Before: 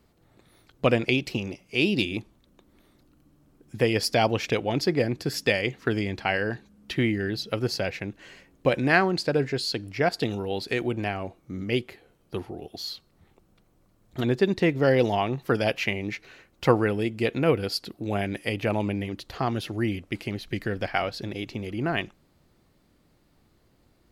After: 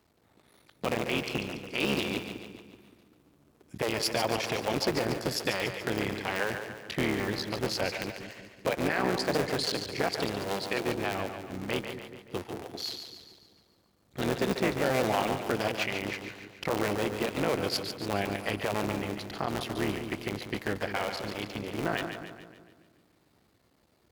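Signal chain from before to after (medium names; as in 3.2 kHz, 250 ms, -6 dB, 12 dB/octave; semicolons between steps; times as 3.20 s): cycle switcher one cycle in 3, muted; high-pass 59 Hz; bass shelf 230 Hz -5.5 dB; peak limiter -16.5 dBFS, peak gain reduction 11 dB; on a send: two-band feedback delay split 410 Hz, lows 190 ms, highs 143 ms, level -7.5 dB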